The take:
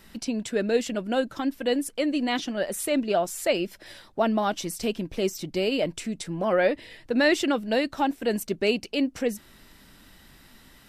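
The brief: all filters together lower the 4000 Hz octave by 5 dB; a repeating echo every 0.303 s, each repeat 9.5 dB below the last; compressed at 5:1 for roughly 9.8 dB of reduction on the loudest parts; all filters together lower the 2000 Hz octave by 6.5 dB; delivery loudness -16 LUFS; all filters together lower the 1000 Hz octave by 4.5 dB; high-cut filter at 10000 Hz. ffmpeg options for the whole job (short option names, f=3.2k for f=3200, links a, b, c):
-af "lowpass=10k,equalizer=f=1k:t=o:g=-5.5,equalizer=f=2k:t=o:g=-5.5,equalizer=f=4k:t=o:g=-4,acompressor=threshold=-30dB:ratio=5,aecho=1:1:303|606|909|1212:0.335|0.111|0.0365|0.012,volume=18dB"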